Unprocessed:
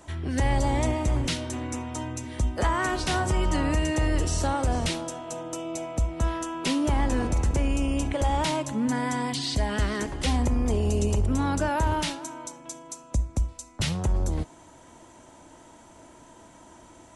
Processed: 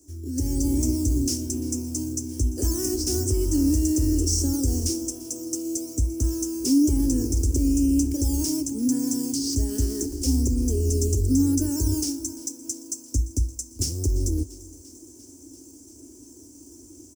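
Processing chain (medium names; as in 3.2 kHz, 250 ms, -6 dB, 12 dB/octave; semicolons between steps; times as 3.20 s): treble shelf 7.9 kHz -8.5 dB; band-stop 2 kHz, Q 5.3; delay 387 ms -23.5 dB; in parallel at -5.5 dB: decimation with a swept rate 8×, swing 100% 1.1 Hz; on the sum: FFT filter 100 Hz 0 dB, 180 Hz -23 dB, 270 Hz +5 dB, 400 Hz -1 dB, 600 Hz -21 dB, 1.1 kHz -28 dB, 2.4 kHz -19 dB, 3.8 kHz -18 dB, 5.4 kHz +11 dB; level rider gain up to 8 dB; high-pass 53 Hz; on a send: thinning echo 344 ms, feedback 76%, level -19.5 dB; on the sum: trim -7 dB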